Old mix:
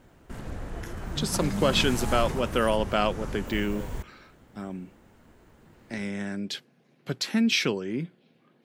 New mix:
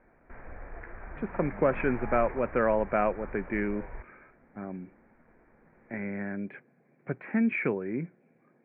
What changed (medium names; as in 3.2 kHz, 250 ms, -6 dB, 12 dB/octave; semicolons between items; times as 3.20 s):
background: add peaking EQ 160 Hz -14.5 dB 2.7 oct; master: add rippled Chebyshev low-pass 2.4 kHz, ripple 3 dB